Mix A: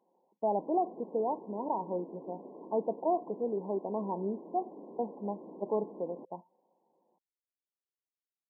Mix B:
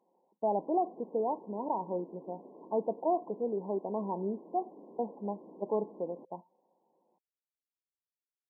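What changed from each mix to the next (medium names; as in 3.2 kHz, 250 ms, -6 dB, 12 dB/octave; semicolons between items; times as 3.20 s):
background -4.0 dB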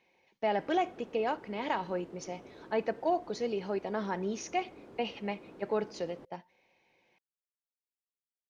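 master: remove brick-wall FIR band-pass 160–1100 Hz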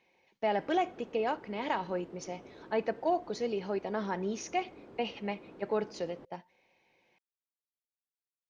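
background: add distance through air 63 m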